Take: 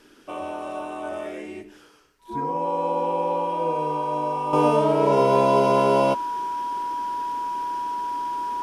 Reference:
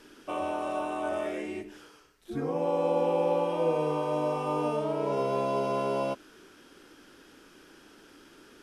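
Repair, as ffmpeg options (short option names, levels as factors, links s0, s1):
-af "bandreject=f=970:w=30,asetnsamples=n=441:p=0,asendcmd='4.53 volume volume -10dB',volume=1"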